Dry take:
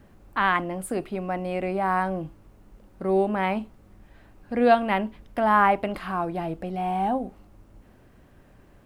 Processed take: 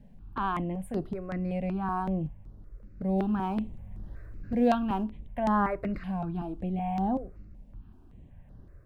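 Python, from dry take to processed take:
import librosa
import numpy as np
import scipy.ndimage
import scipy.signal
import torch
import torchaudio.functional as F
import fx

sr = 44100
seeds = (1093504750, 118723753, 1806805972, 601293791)

y = fx.law_mismatch(x, sr, coded='mu', at=(3.18, 5.04))
y = fx.bass_treble(y, sr, bass_db=12, treble_db=-8)
y = fx.phaser_held(y, sr, hz=5.3, low_hz=340.0, high_hz=7900.0)
y = F.gain(torch.from_numpy(y), -6.0).numpy()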